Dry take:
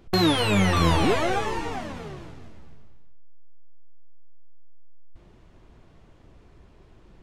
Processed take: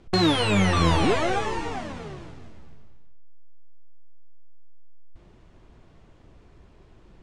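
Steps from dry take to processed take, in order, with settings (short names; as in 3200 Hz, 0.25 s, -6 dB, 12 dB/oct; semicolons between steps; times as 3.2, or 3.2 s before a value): steep low-pass 10000 Hz 36 dB/oct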